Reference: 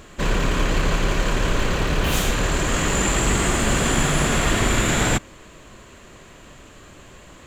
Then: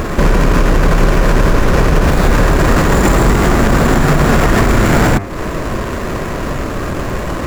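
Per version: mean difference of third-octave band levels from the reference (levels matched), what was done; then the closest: 6.5 dB: median filter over 15 samples; compression 6:1, threshold -31 dBFS, peak gain reduction 14.5 dB; de-hum 98.68 Hz, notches 27; loudness maximiser +28 dB; trim -1 dB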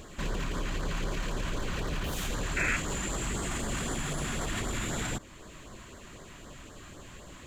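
4.0 dB: in parallel at -2.5 dB: compression, threshold -33 dBFS, peak gain reduction 16.5 dB; on the sum: peak limiter -16.5 dBFS, peak gain reduction 10 dB; LFO notch sine 3.9 Hz 420–2700 Hz; painted sound noise, 2.56–2.77 s, 1.3–2.7 kHz -23 dBFS; trim -7 dB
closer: second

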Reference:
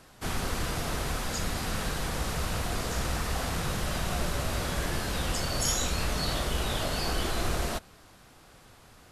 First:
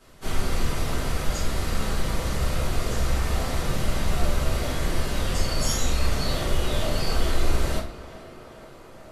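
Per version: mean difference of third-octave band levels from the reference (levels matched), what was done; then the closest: 3.0 dB: tape echo 435 ms, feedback 84%, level -14.5 dB, low-pass 2.8 kHz; simulated room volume 48 m³, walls mixed, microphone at 1.6 m; trim -7 dB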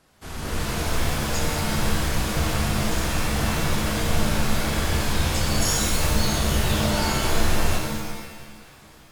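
4.0 dB: level rider gain up to 9.5 dB; pitch-shifted reverb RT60 1.2 s, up +7 st, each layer -2 dB, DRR 1 dB; trim -7.5 dB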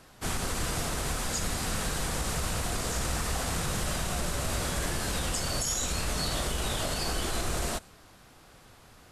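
1.0 dB: dynamic bell 8.2 kHz, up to +7 dB, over -53 dBFS, Q 1.3; peak limiter -20.5 dBFS, peak gain reduction 8.5 dB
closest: third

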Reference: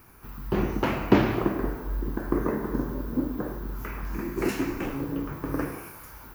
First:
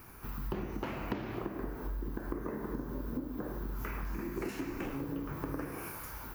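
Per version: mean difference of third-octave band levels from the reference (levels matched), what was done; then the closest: 4.5 dB: compression 10:1, threshold -35 dBFS, peak gain reduction 22.5 dB; trim +1 dB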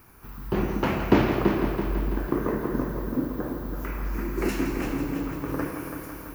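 2.5 dB: multi-head delay 166 ms, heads first and second, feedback 60%, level -10 dB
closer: second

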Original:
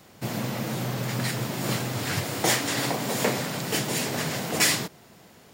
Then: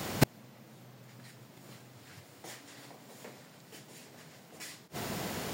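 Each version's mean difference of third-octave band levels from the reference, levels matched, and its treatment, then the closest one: 13.5 dB: high-pass 44 Hz; inverted gate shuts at -22 dBFS, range -39 dB; trim +14.5 dB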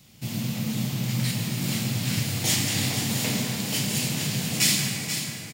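6.0 dB: high-order bell 760 Hz -12.5 dB 2.8 oct; delay 485 ms -8.5 dB; plate-style reverb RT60 3.6 s, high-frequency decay 0.45×, DRR -0.5 dB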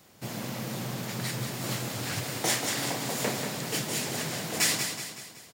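3.0 dB: treble shelf 4.1 kHz +6 dB; feedback delay 187 ms, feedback 48%, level -7 dB; loudspeaker Doppler distortion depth 0.11 ms; trim -6.5 dB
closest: third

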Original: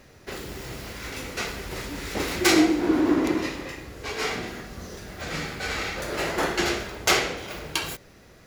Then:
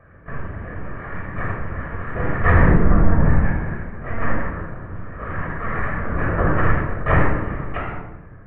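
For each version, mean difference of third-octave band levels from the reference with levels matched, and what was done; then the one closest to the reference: 12.5 dB: mistuned SSB -260 Hz 310–2100 Hz; monotone LPC vocoder at 8 kHz 230 Hz; simulated room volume 3700 m³, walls furnished, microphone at 5.9 m; trim +2 dB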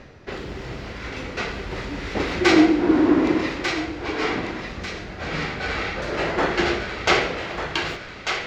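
5.5 dB: reverse; upward compressor, threshold -38 dBFS; reverse; distance through air 170 m; thinning echo 1194 ms, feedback 45%, high-pass 940 Hz, level -5 dB; trim +4.5 dB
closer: second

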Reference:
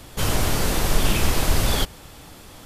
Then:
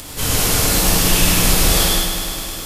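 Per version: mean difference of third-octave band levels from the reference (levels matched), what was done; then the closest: 6.0 dB: treble shelf 3.7 kHz +9.5 dB; upward compressor, threshold -26 dBFS; gated-style reverb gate 240 ms flat, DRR -4.5 dB; bit-crushed delay 102 ms, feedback 80%, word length 8-bit, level -7.5 dB; trim -3 dB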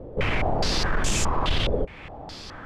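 10.0 dB: band-stop 1.4 kHz, Q 30; in parallel at +3 dB: compression, threshold -28 dBFS, peak gain reduction 15.5 dB; on the sum: saturation -9.5 dBFS, distortion -18 dB; step-sequenced low-pass 4.8 Hz 500–7100 Hz; trim -5.5 dB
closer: first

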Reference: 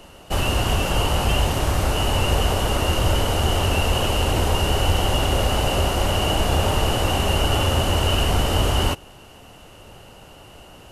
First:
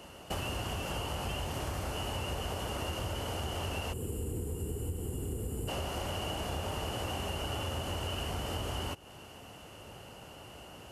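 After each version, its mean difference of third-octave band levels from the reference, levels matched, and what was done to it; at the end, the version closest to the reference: 4.0 dB: time-frequency box 3.93–5.68 s, 510–6900 Hz -19 dB; high-pass 61 Hz; band-stop 3.8 kHz, Q 14; compression 6:1, threshold -29 dBFS, peak gain reduction 12.5 dB; trim -4.5 dB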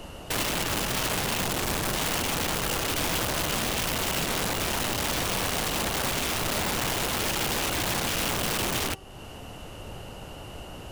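6.5 dB: bass shelf 450 Hz +4 dB; de-hum 385.2 Hz, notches 30; compression 2:1, threshold -32 dBFS, peak gain reduction 12 dB; integer overflow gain 24.5 dB; trim +1.5 dB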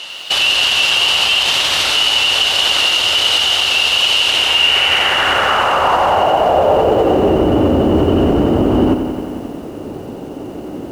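10.0 dB: in parallel at -2 dB: compressor with a negative ratio -23 dBFS; on the sum: band-pass sweep 3.6 kHz -> 290 Hz, 4.26–7.52 s; loudness maximiser +24.5 dB; bit-crushed delay 90 ms, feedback 80%, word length 6-bit, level -9.5 dB; trim -5 dB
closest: first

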